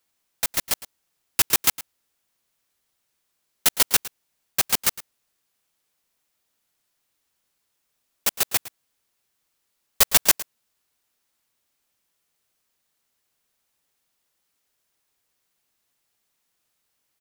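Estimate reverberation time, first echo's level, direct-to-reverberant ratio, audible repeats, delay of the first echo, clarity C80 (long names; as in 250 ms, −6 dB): no reverb audible, −17.0 dB, no reverb audible, 1, 110 ms, no reverb audible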